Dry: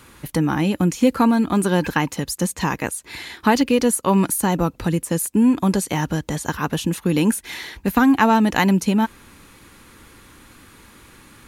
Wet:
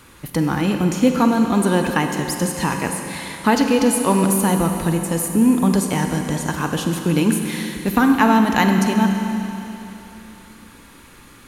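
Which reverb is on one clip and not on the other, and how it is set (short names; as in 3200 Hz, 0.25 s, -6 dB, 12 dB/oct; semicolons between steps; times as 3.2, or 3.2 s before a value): Schroeder reverb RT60 3.3 s, combs from 32 ms, DRR 4 dB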